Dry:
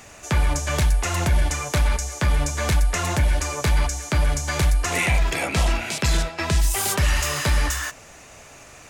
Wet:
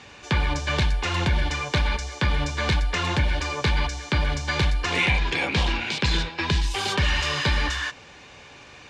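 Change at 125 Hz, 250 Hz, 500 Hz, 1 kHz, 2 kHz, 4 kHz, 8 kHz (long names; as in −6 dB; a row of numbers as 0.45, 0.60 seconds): −2.5, 0.0, −2.0, −0.5, +1.0, +3.0, −11.0 decibels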